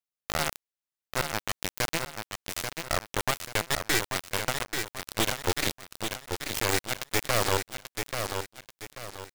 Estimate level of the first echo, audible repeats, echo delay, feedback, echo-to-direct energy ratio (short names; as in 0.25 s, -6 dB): -6.0 dB, 4, 0.836 s, 36%, -5.5 dB